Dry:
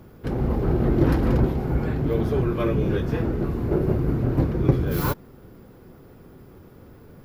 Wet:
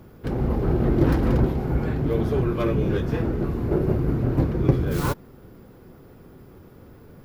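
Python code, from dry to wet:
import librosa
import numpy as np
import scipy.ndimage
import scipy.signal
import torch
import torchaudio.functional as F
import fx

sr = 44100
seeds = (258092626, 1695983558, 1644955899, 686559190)

y = fx.tracing_dist(x, sr, depth_ms=0.098)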